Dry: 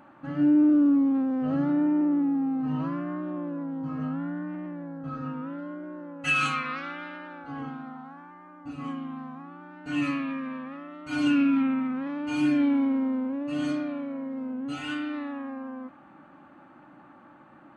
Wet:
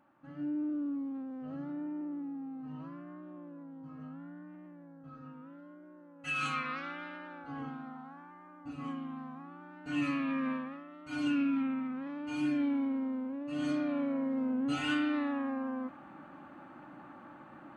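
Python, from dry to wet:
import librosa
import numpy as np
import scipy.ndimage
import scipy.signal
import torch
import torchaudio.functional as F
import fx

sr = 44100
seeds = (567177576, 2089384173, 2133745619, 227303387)

y = fx.gain(x, sr, db=fx.line((6.13, -15.0), (6.58, -5.0), (10.08, -5.0), (10.5, 1.5), (10.85, -8.0), (13.46, -8.0), (14.02, 1.0)))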